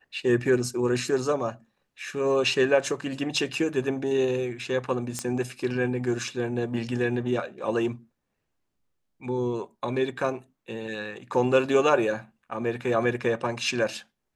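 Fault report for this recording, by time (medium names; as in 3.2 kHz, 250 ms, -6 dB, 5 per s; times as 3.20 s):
5.19 s: pop -14 dBFS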